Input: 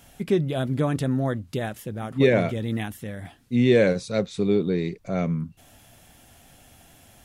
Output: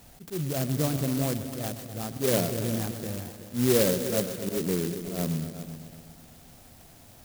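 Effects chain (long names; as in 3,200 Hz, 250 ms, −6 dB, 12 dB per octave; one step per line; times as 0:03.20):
in parallel at 0 dB: downward compressor 6 to 1, threshold −33 dBFS, peak gain reduction 18.5 dB
on the sum: volume swells 130 ms
echo machine with several playback heads 126 ms, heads all three, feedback 43%, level −14 dB
converter with an unsteady clock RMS 0.15 ms
level −5.5 dB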